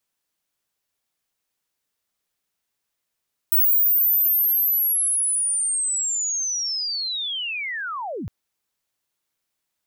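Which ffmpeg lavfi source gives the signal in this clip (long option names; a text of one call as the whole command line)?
ffmpeg -f lavfi -i "aevalsrc='pow(10,(-14-13.5*t/4.76)/20)*sin(2*PI*(16000*t-15936*t*t/(2*4.76)))':duration=4.76:sample_rate=44100" out.wav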